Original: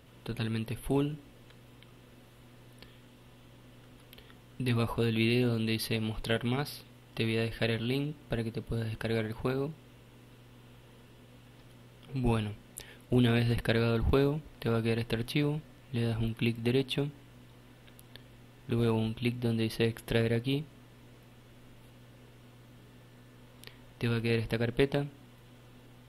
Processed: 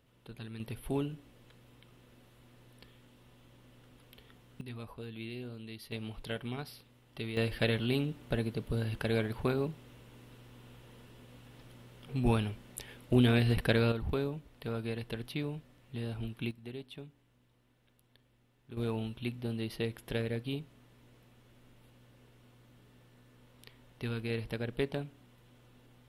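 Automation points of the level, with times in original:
−11.5 dB
from 0:00.60 −4.5 dB
from 0:04.61 −15 dB
from 0:05.92 −8 dB
from 0:07.37 +0.5 dB
from 0:13.92 −7 dB
from 0:16.51 −15.5 dB
from 0:18.77 −6 dB

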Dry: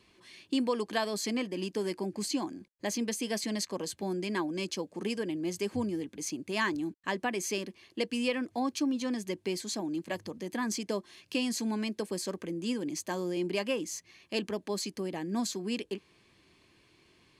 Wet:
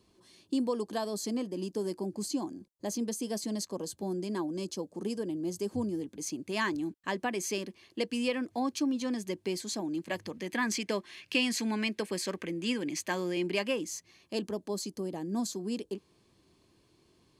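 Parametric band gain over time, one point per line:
parametric band 2,200 Hz 1.4 octaves
0:05.72 −14 dB
0:06.53 −2 dB
0:09.89 −2 dB
0:10.45 +8.5 dB
0:13.32 +8.5 dB
0:13.83 −1.5 dB
0:14.62 −12 dB

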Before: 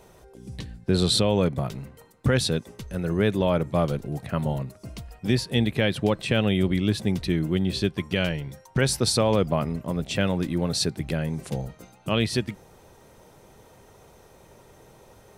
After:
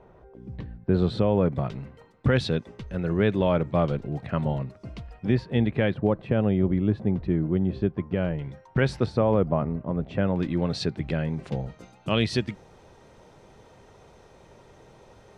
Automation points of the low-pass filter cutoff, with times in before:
1,500 Hz
from 0:01.52 3,200 Hz
from 0:05.25 1,900 Hz
from 0:05.94 1,100 Hz
from 0:08.39 2,500 Hz
from 0:09.06 1,300 Hz
from 0:10.36 3,200 Hz
from 0:11.68 5,500 Hz

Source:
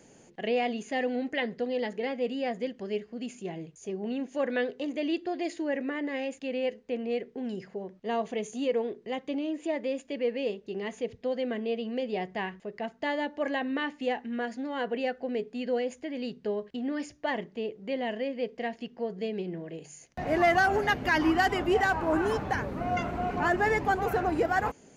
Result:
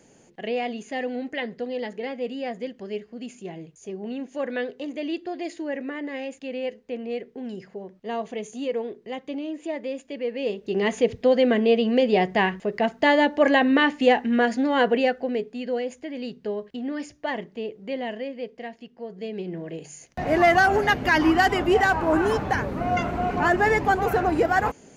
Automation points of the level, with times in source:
0:10.30 +0.5 dB
0:10.83 +12 dB
0:14.81 +12 dB
0:15.59 +2 dB
0:17.98 +2 dB
0:18.92 −5 dB
0:19.67 +5.5 dB

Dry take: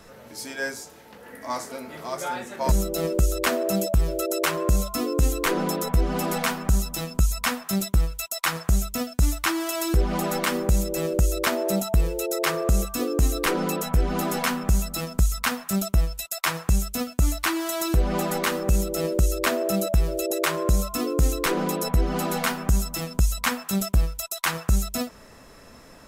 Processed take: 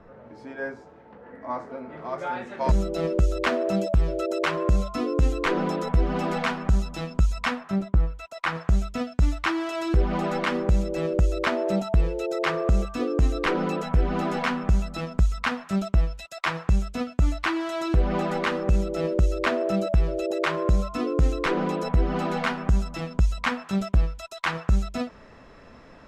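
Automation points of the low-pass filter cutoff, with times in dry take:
0:01.80 1,300 Hz
0:02.61 3,400 Hz
0:07.48 3,400 Hz
0:07.85 1,400 Hz
0:08.78 3,200 Hz

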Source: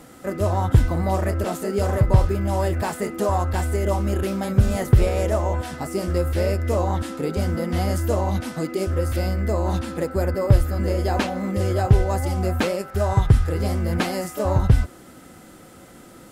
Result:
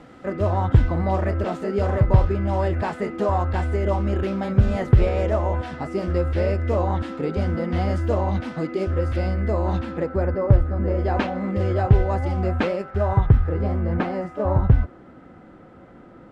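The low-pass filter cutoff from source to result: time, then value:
0:09.69 3,200 Hz
0:10.79 1,300 Hz
0:11.18 2,800 Hz
0:12.75 2,800 Hz
0:13.42 1,600 Hz

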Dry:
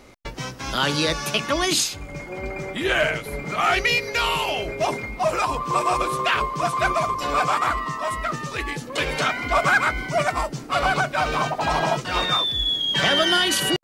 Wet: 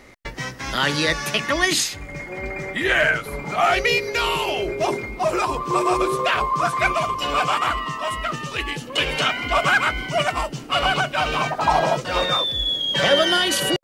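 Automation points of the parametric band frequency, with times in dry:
parametric band +11 dB 0.28 octaves
0:02.99 1,900 Hz
0:04.01 370 Hz
0:06.11 370 Hz
0:06.95 2,900 Hz
0:11.39 2,900 Hz
0:11.84 540 Hz

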